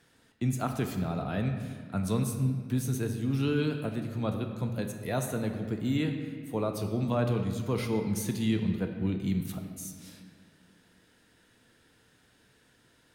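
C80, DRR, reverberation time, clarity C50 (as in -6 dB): 7.5 dB, 4.5 dB, 1.9 s, 6.5 dB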